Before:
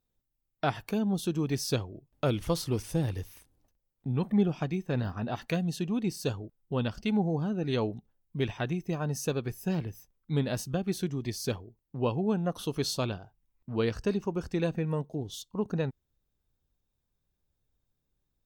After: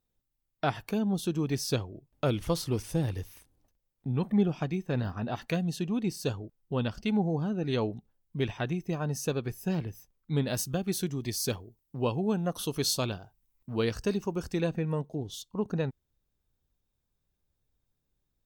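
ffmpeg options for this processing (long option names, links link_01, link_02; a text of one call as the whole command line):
ffmpeg -i in.wav -filter_complex "[0:a]asettb=1/sr,asplit=3[link_01][link_02][link_03];[link_01]atrim=end=10.474[link_04];[link_02]atrim=start=10.47:end=14.61,asetpts=PTS-STARTPTS,afade=type=in:duration=0.004:curve=qsin,afade=type=out:start_time=4.136:duration=0.004:curve=qsin,aemphasis=mode=production:type=cd[link_05];[link_03]atrim=start=14.606[link_06];[link_04][link_05]acrossfade=duration=0.004:curve1=hsin:curve2=qsin[link_07];[link_07][link_06]acrossfade=duration=0.004:curve1=qsin:curve2=hsin" out.wav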